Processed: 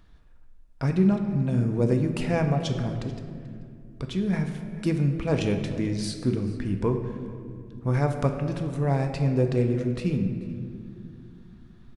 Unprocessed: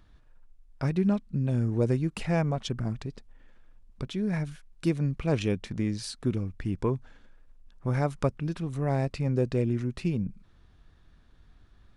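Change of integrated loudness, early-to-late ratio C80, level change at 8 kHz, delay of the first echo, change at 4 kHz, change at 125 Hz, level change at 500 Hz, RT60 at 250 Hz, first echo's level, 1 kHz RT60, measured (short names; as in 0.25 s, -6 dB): +3.0 dB, 8.0 dB, +2.0 dB, 0.436 s, +2.5 dB, +3.5 dB, +3.5 dB, 4.0 s, -20.5 dB, 1.9 s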